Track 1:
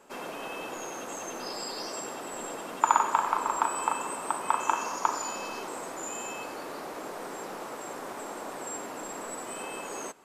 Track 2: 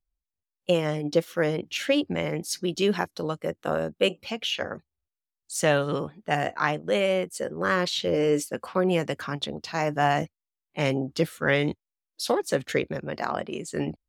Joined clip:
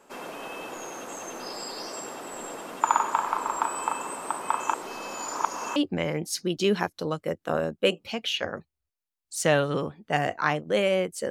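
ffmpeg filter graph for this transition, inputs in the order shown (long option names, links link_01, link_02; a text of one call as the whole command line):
ffmpeg -i cue0.wav -i cue1.wav -filter_complex "[0:a]apad=whole_dur=11.3,atrim=end=11.3,asplit=2[link_01][link_02];[link_01]atrim=end=4.742[link_03];[link_02]atrim=start=4.738:end=5.762,asetpts=PTS-STARTPTS,areverse[link_04];[1:a]atrim=start=1.938:end=7.48[link_05];[link_03][link_04]acrossfade=duration=0.004:curve1=hsin:curve2=hsin[link_06];[link_06][link_05]acrossfade=duration=0.004:curve1=hsin:curve2=hsin" out.wav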